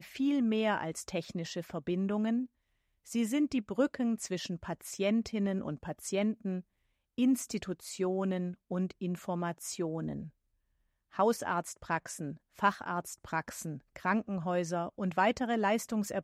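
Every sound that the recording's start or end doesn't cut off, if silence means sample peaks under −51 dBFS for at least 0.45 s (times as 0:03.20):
0:03.06–0:06.61
0:07.18–0:10.29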